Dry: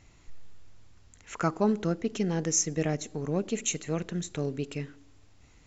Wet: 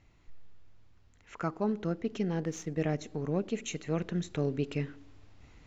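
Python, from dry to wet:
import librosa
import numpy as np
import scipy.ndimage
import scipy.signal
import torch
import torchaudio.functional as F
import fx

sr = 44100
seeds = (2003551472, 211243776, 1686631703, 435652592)

y = fx.median_filter(x, sr, points=9, at=(2.4, 2.8))
y = fx.rider(y, sr, range_db=10, speed_s=0.5)
y = fx.air_absorb(y, sr, metres=130.0)
y = y * librosa.db_to_amplitude(-2.0)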